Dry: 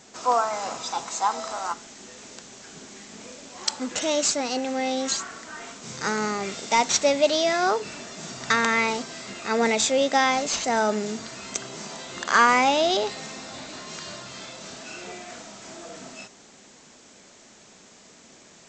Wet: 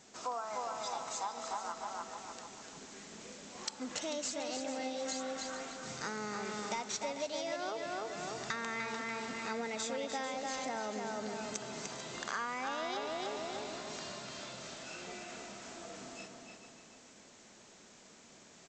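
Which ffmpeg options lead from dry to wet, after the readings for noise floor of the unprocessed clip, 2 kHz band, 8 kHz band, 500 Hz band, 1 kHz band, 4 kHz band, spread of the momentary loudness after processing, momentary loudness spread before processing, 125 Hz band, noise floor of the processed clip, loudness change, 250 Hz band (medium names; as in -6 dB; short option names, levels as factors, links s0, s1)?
-52 dBFS, -14.5 dB, -13.5 dB, -14.0 dB, -14.5 dB, -14.0 dB, 15 LU, 21 LU, -10.5 dB, -58 dBFS, -15.5 dB, -13.0 dB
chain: -filter_complex "[0:a]asplit=2[s0][s1];[s1]adelay=297,lowpass=f=4300:p=1,volume=0.631,asplit=2[s2][s3];[s3]adelay=297,lowpass=f=4300:p=1,volume=0.41,asplit=2[s4][s5];[s5]adelay=297,lowpass=f=4300:p=1,volume=0.41,asplit=2[s6][s7];[s7]adelay=297,lowpass=f=4300:p=1,volume=0.41,asplit=2[s8][s9];[s9]adelay=297,lowpass=f=4300:p=1,volume=0.41[s10];[s2][s4][s6][s8][s10]amix=inputs=5:normalize=0[s11];[s0][s11]amix=inputs=2:normalize=0,acompressor=threshold=0.0447:ratio=6,asplit=2[s12][s13];[s13]aecho=0:1:443:0.266[s14];[s12][s14]amix=inputs=2:normalize=0,volume=0.376"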